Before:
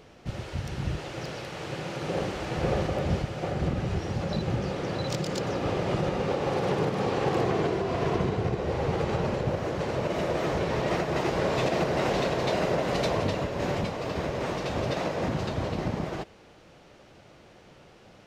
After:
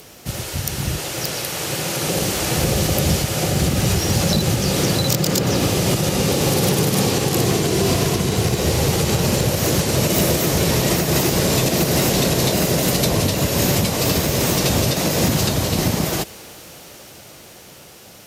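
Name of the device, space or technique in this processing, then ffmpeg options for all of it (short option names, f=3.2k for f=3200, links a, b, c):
FM broadcast chain: -filter_complex "[0:a]highpass=47,dynaudnorm=f=490:g=13:m=11dB,acrossover=split=320|2400|5400[a][b][c][d];[a]acompressor=threshold=-22dB:ratio=4[e];[b]acompressor=threshold=-32dB:ratio=4[f];[c]acompressor=threshold=-41dB:ratio=4[g];[d]acompressor=threshold=-48dB:ratio=4[h];[e][f][g][h]amix=inputs=4:normalize=0,aemphasis=mode=production:type=50fm,alimiter=limit=-15.5dB:level=0:latency=1:release=255,asoftclip=type=hard:threshold=-18dB,lowpass=f=15k:w=0.5412,lowpass=f=15k:w=1.3066,aemphasis=mode=production:type=50fm,volume=7.5dB"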